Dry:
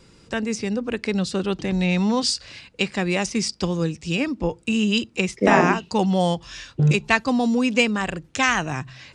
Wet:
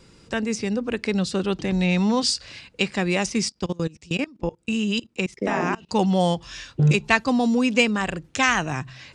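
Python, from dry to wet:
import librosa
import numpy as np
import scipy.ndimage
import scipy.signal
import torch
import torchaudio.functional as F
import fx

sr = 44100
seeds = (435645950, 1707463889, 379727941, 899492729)

y = fx.level_steps(x, sr, step_db=23, at=(3.49, 5.89))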